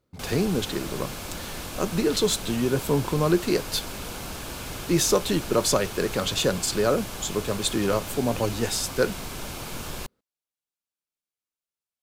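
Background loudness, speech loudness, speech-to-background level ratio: −35.0 LKFS, −25.5 LKFS, 9.5 dB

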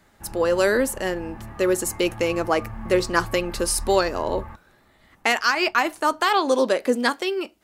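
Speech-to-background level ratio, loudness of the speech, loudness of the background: 16.0 dB, −22.5 LKFS, −38.5 LKFS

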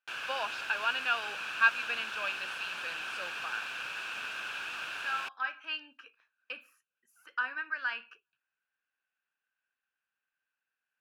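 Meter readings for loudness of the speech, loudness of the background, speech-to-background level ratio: −34.5 LKFS, −37.0 LKFS, 2.5 dB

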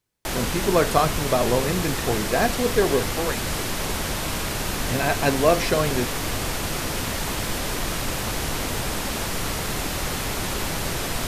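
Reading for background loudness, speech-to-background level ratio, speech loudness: −26.5 LKFS, 2.5 dB, −24.0 LKFS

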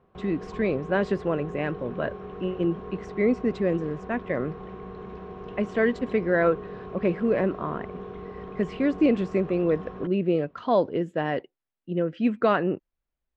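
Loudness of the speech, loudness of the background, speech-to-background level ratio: −26.5 LKFS, −39.5 LKFS, 13.0 dB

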